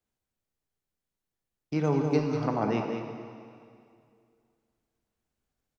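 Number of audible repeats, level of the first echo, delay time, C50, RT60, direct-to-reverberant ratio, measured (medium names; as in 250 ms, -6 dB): 1, -7.5 dB, 198 ms, 3.0 dB, 2.3 s, 2.0 dB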